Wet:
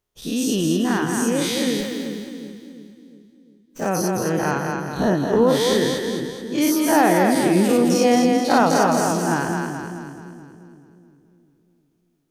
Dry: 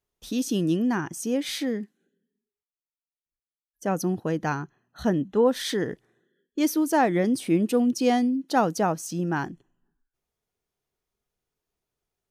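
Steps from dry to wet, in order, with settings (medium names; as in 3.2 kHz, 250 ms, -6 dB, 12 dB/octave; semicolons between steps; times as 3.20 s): every event in the spectrogram widened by 120 ms; two-band feedback delay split 370 Hz, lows 353 ms, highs 215 ms, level -4 dB; 1.80–3.87 s: sliding maximum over 3 samples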